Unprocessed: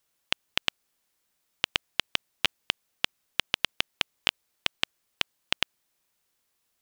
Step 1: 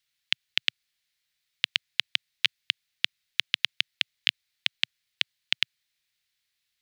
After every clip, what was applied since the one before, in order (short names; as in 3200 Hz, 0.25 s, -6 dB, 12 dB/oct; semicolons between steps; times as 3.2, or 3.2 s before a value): graphic EQ 125/250/500/1000/2000/4000 Hz +6/-9/-7/-7/+10/+11 dB; gain -8.5 dB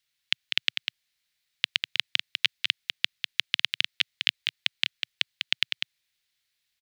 echo 0.198 s -6 dB